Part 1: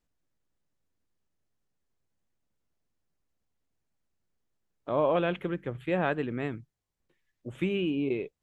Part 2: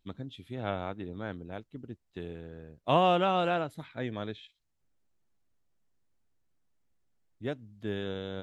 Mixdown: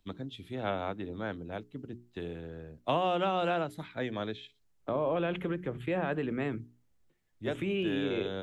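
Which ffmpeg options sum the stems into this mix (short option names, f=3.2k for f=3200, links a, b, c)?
-filter_complex "[0:a]agate=range=-7dB:threshold=-47dB:ratio=16:detection=peak,lowshelf=f=260:g=10,alimiter=limit=-21dB:level=0:latency=1:release=68,volume=1.5dB[a];[1:a]volume=2.5dB[b];[a][b]amix=inputs=2:normalize=0,bandreject=f=60:t=h:w=6,bandreject=f=120:t=h:w=6,bandreject=f=180:t=h:w=6,bandreject=f=240:t=h:w=6,bandreject=f=300:t=h:w=6,bandreject=f=360:t=h:w=6,bandreject=f=420:t=h:w=6,acrossover=split=180|460[c][d][e];[c]acompressor=threshold=-45dB:ratio=4[f];[d]acompressor=threshold=-34dB:ratio=4[g];[e]acompressor=threshold=-29dB:ratio=4[h];[f][g][h]amix=inputs=3:normalize=0"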